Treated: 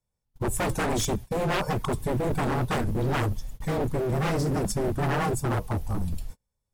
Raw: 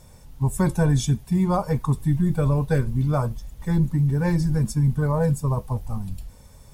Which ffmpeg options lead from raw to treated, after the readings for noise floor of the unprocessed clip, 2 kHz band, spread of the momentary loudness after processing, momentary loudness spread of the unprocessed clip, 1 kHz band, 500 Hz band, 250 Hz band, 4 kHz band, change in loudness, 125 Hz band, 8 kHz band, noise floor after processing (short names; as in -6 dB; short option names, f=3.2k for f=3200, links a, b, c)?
-48 dBFS, +4.0 dB, 6 LU, 9 LU, +1.5 dB, 0.0 dB, -6.0 dB, n/a, -5.0 dB, -8.0 dB, +2.0 dB, -82 dBFS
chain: -af "afreqshift=-14,aeval=exprs='0.0708*(abs(mod(val(0)/0.0708+3,4)-2)-1)':c=same,agate=range=-37dB:threshold=-37dB:ratio=16:detection=peak,volume=2.5dB"